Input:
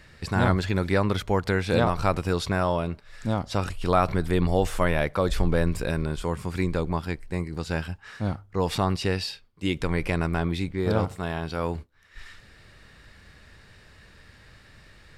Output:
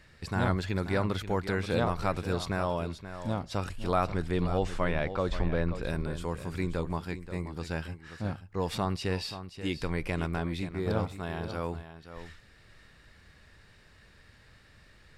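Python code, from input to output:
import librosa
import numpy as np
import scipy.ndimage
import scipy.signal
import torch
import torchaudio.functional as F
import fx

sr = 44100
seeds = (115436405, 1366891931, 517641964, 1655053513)

y = fx.lowpass(x, sr, hz=fx.line((4.05, 8300.0), (5.81, 3800.0)), slope=12, at=(4.05, 5.81), fade=0.02)
y = y + 10.0 ** (-11.5 / 20.0) * np.pad(y, (int(531 * sr / 1000.0), 0))[:len(y)]
y = F.gain(torch.from_numpy(y), -6.0).numpy()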